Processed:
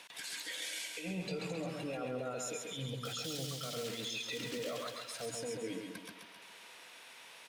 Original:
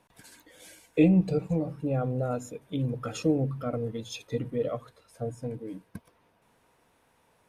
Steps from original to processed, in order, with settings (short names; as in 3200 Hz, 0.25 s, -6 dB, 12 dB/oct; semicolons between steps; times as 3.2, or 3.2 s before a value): 3.05–5.26 block floating point 5-bit; weighting filter D; 2.73–3.76 spectral gain 210–2900 Hz -10 dB; HPF 98 Hz; low shelf 320 Hz -11.5 dB; negative-ratio compressor -32 dBFS, ratio -0.5; limiter -38 dBFS, peak gain reduction 19 dB; feedback echo 0.135 s, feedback 45%, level -4 dB; mismatched tape noise reduction encoder only; gain +5 dB